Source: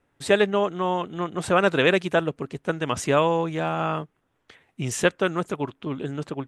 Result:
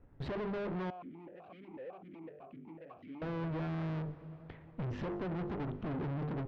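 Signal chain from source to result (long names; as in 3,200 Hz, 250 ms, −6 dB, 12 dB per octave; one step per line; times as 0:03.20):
treble cut that deepens with the level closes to 1,200 Hz, closed at −17.5 dBFS
spectral tilt −4 dB per octave
mains-hum notches 50/100/150/200/250/300/350/400/450 Hz
brickwall limiter −11.5 dBFS, peak gain reduction 7.5 dB
downward compressor, threshold −22 dBFS, peak gain reduction 7 dB
tube saturation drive 39 dB, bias 0.75
high-frequency loss of the air 280 metres
convolution reverb RT60 5.3 s, pre-delay 115 ms, DRR 15.5 dB
0:00.90–0:03.22: formant filter that steps through the vowels 8 Hz
level +3.5 dB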